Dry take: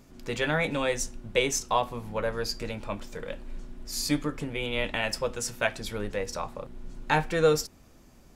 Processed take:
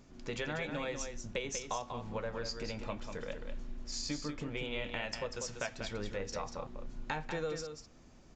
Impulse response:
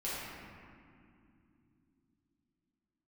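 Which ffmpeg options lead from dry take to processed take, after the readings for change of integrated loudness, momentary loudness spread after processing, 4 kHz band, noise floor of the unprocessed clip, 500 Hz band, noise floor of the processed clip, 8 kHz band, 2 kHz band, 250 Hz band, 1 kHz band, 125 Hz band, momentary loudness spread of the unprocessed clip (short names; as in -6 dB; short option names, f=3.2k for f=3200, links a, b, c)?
-10.5 dB, 8 LU, -8.5 dB, -55 dBFS, -11.0 dB, -58 dBFS, -9.5 dB, -10.5 dB, -9.0 dB, -11.0 dB, -9.0 dB, 14 LU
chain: -filter_complex "[0:a]acompressor=threshold=-31dB:ratio=6,asplit=2[a][b];[b]aecho=0:1:192:0.447[c];[a][c]amix=inputs=2:normalize=0,aresample=16000,aresample=44100,volume=-4dB"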